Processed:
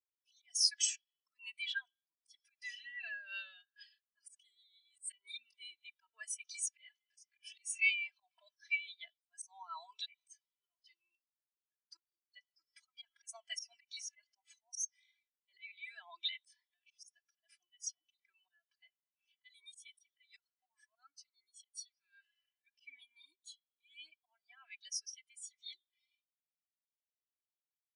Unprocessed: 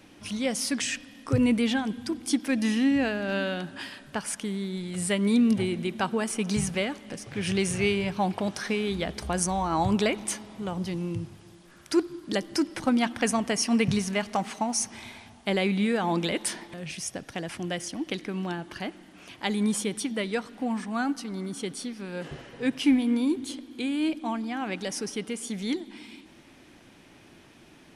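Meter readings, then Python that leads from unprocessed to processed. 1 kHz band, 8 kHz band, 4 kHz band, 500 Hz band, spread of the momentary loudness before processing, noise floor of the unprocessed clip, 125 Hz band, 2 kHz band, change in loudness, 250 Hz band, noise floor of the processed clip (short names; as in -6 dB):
-27.0 dB, -8.5 dB, -8.5 dB, under -40 dB, 12 LU, -53 dBFS, under -40 dB, -9.5 dB, -11.5 dB, under -40 dB, under -85 dBFS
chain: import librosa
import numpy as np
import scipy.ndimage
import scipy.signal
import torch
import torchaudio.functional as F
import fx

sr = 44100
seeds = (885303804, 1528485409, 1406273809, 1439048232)

y = scipy.signal.sosfilt(scipy.signal.butter(2, 820.0, 'highpass', fs=sr, output='sos'), x)
y = y + 0.74 * np.pad(y, (int(3.0 * sr / 1000.0), 0))[:len(y)]
y = fx.auto_swell(y, sr, attack_ms=138.0)
y = scipy.signal.sosfilt(scipy.signal.butter(2, 7200.0, 'lowpass', fs=sr, output='sos'), y)
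y = np.diff(y, prepend=0.0)
y = fx.spectral_expand(y, sr, expansion=2.5)
y = y * 10.0 ** (3.5 / 20.0)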